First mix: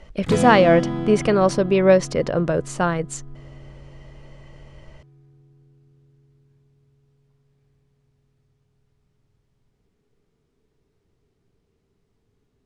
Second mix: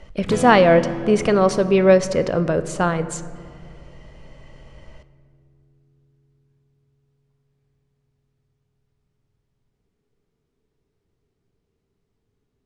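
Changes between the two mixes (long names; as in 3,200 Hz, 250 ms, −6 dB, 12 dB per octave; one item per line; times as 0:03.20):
speech: send on
background −4.5 dB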